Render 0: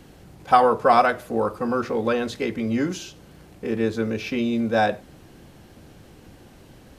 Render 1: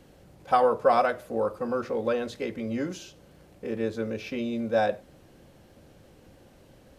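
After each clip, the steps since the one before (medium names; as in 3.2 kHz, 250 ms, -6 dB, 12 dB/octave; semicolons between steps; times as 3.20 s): peaking EQ 550 Hz +7.5 dB 0.38 oct; trim -7.5 dB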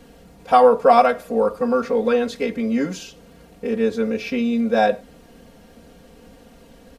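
comb 4.3 ms, depth 86%; trim +5.5 dB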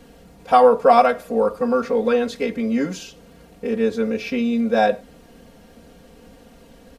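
no audible change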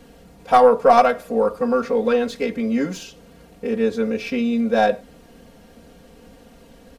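tracing distortion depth 0.048 ms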